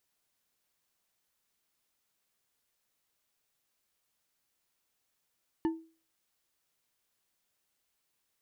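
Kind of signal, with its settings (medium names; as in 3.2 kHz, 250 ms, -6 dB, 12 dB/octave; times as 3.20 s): glass hit bar, lowest mode 325 Hz, decay 0.37 s, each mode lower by 9.5 dB, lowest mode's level -23.5 dB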